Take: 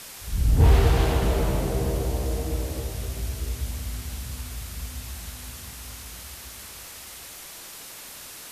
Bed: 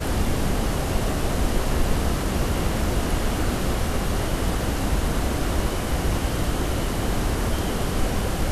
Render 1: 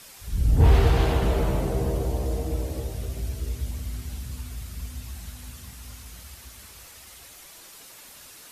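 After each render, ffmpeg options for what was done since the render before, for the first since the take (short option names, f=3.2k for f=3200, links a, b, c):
-af "afftdn=nr=7:nf=-42"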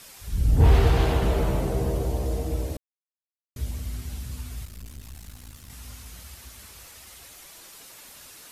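-filter_complex "[0:a]asettb=1/sr,asplit=3[a][b][c];[a]atrim=end=4.654[d];[b]atrim=start=4.65:end=5.7,asetpts=PTS-STARTPTS,afade=t=in:d=0.004:c=qsin,afade=t=out:st=1.046:d=0.004:c=qsin,aeval=exprs='(tanh(70.8*val(0)+0.8)-tanh(0.8))/70.8':c=same[e];[c]atrim=start=5.696[f];[d][e]acrossfade=d=0.004:c1=hsin:c2=qsin[g];[g][f]acrossfade=d=0.004:c1=qsin:c2=hsin,asplit=3[h][i][j];[h]atrim=end=2.77,asetpts=PTS-STARTPTS,afade=t=out:st=2.766:d=0.004:c=hsin[k];[i]atrim=start=2.77:end=3.56,asetpts=PTS-STARTPTS,volume=0[l];[j]atrim=start=3.56,asetpts=PTS-STARTPTS,afade=t=in:d=0.004:c=hsin[m];[k][l][m]concat=n=3:v=0:a=1"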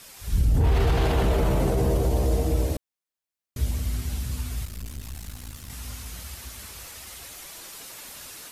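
-af "dynaudnorm=f=160:g=3:m=5dB,alimiter=limit=-14dB:level=0:latency=1:release=26"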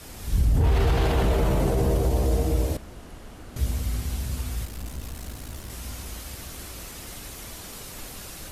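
-filter_complex "[1:a]volume=-19.5dB[a];[0:a][a]amix=inputs=2:normalize=0"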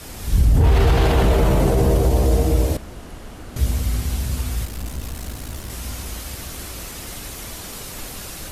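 -af "volume=6dB"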